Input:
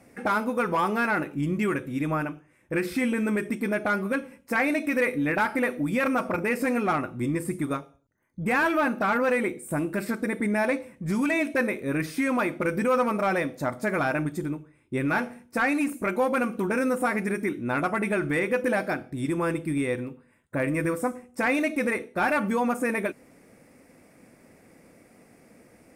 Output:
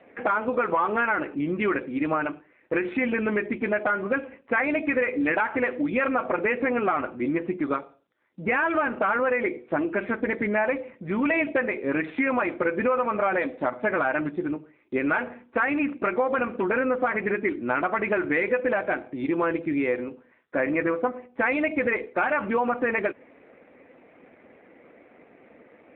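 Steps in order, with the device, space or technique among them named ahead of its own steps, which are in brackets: voicemail (band-pass 340–3000 Hz; compression 8:1, threshold -26 dBFS, peak gain reduction 8 dB; trim +7 dB; AMR-NB 7.4 kbps 8 kHz)

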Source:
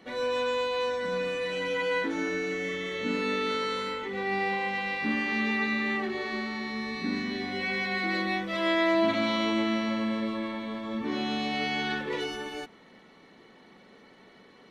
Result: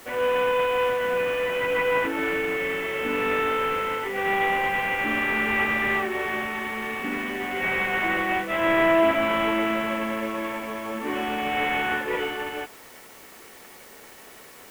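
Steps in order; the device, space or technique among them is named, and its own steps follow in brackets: army field radio (band-pass 380–3100 Hz; CVSD coder 16 kbps; white noise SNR 24 dB); trim +7.5 dB

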